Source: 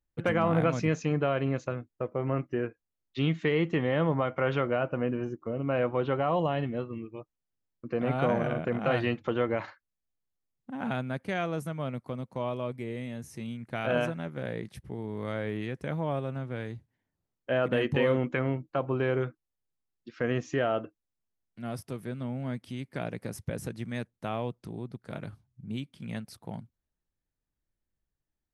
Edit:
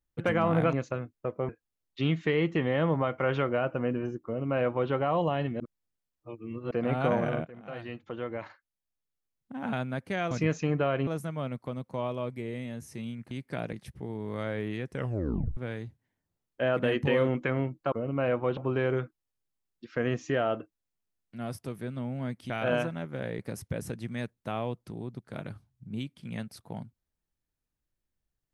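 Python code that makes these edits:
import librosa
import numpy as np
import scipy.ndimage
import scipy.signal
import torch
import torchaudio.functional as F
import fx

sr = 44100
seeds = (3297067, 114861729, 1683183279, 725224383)

y = fx.edit(x, sr, fx.move(start_s=0.73, length_s=0.76, to_s=11.49),
    fx.cut(start_s=2.25, length_s=0.42),
    fx.duplicate(start_s=5.43, length_s=0.65, to_s=18.81),
    fx.reverse_span(start_s=6.78, length_s=1.11),
    fx.fade_in_from(start_s=8.63, length_s=2.28, floor_db=-20.0),
    fx.swap(start_s=13.73, length_s=0.89, other_s=22.74, other_length_s=0.42),
    fx.tape_stop(start_s=15.83, length_s=0.63), tone=tone)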